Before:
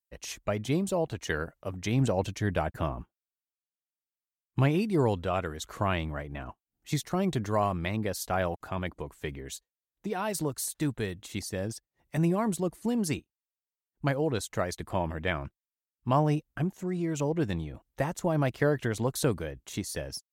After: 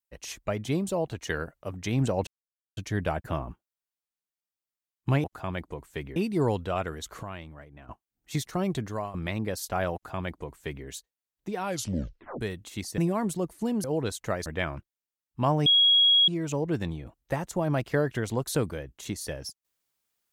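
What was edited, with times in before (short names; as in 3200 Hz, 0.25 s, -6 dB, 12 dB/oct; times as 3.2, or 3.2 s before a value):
2.27 insert silence 0.50 s
5.81–6.47 gain -11 dB
7.16–7.72 fade out equal-power, to -15 dB
8.52–9.44 copy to 4.74
10.19 tape stop 0.80 s
11.56–12.21 cut
13.07–14.13 cut
14.75–15.14 cut
16.34–16.96 bleep 3310 Hz -16.5 dBFS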